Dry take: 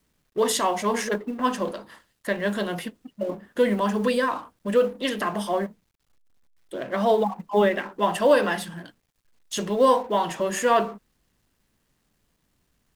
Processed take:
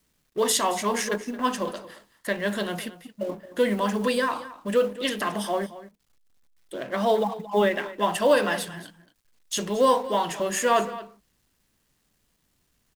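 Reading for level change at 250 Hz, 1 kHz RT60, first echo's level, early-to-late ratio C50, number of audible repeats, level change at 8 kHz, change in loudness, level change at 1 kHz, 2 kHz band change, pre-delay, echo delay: −2.0 dB, no reverb audible, −16.0 dB, no reverb audible, 1, +3.0 dB, −1.0 dB, −1.0 dB, 0.0 dB, no reverb audible, 223 ms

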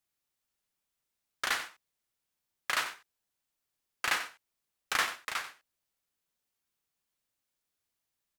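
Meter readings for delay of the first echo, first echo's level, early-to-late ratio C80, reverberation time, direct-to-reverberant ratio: 91 ms, −12.5 dB, no reverb audible, no reverb audible, no reverb audible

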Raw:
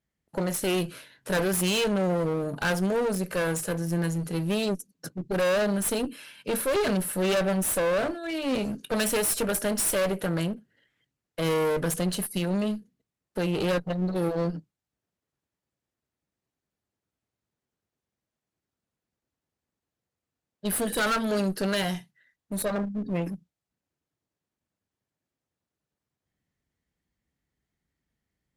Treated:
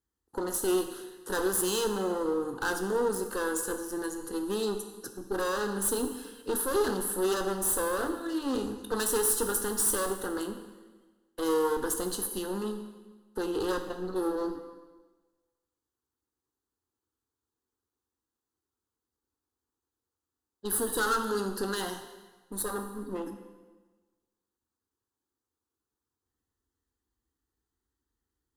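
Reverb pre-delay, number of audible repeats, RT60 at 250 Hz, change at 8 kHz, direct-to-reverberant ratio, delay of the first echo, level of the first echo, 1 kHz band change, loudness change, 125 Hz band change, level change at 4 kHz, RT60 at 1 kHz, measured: 6 ms, no echo audible, 1.3 s, 0.0 dB, 6.5 dB, no echo audible, no echo audible, −0.5 dB, −3.0 dB, −14.5 dB, −5.5 dB, 1.3 s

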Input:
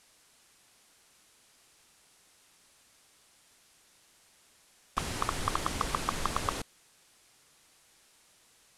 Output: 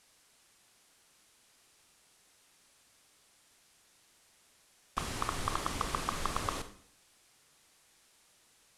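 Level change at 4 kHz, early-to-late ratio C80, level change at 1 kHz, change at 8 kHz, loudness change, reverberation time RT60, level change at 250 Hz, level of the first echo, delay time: −2.5 dB, 16.0 dB, −2.5 dB, −2.5 dB, −2.5 dB, 0.60 s, −2.5 dB, no echo audible, no echo audible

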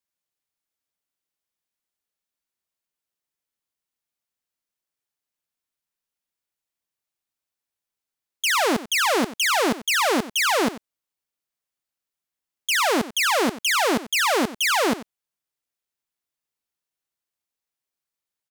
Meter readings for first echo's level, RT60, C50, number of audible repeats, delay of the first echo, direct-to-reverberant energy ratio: −15.5 dB, no reverb audible, no reverb audible, 1, 92 ms, no reverb audible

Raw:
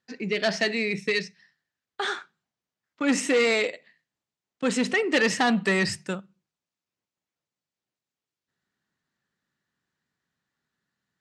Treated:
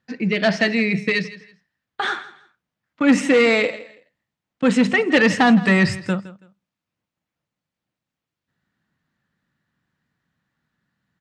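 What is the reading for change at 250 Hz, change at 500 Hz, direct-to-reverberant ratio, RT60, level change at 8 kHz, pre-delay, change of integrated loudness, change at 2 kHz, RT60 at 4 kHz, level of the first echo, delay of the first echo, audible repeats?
+9.5 dB, +5.5 dB, no reverb audible, no reverb audible, −1.5 dB, no reverb audible, +6.5 dB, +6.0 dB, no reverb audible, −17.5 dB, 164 ms, 2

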